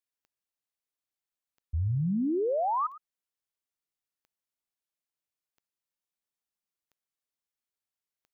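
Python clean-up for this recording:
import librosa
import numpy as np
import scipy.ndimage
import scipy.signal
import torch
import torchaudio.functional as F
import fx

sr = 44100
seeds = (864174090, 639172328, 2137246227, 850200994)

y = fx.fix_declick_ar(x, sr, threshold=10.0)
y = fx.fix_echo_inverse(y, sr, delay_ms=109, level_db=-17.5)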